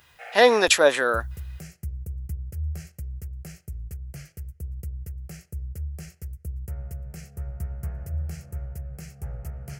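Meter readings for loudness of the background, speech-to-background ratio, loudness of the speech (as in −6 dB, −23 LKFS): −36.5 LKFS, 17.0 dB, −19.5 LKFS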